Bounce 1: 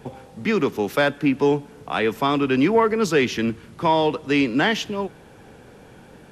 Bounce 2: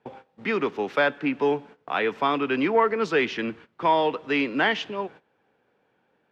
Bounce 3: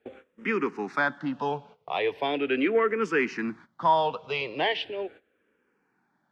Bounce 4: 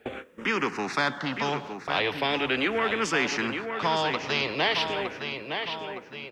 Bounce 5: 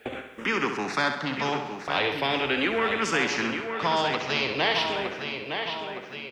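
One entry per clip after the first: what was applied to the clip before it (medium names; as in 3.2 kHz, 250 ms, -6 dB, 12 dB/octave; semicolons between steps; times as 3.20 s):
high-pass 520 Hz 6 dB/octave; gate -43 dBFS, range -18 dB; low-pass 3 kHz 12 dB/octave
barber-pole phaser -0.39 Hz
feedback delay 913 ms, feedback 32%, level -13 dB; spectrum-flattening compressor 2:1
feedback delay 66 ms, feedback 51%, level -8 dB; tape noise reduction on one side only encoder only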